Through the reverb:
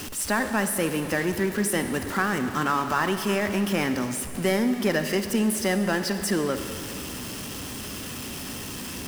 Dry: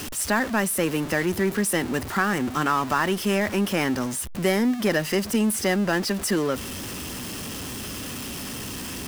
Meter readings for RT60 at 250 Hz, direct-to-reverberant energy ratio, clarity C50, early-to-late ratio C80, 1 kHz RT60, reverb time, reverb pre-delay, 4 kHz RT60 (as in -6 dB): 2.5 s, 8.0 dB, 8.5 dB, 9.5 dB, 2.6 s, 2.6 s, 39 ms, 2.2 s